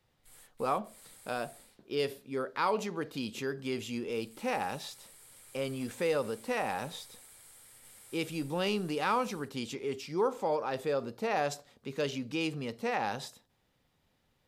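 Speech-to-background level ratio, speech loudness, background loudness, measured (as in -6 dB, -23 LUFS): 19.5 dB, -34.5 LUFS, -54.0 LUFS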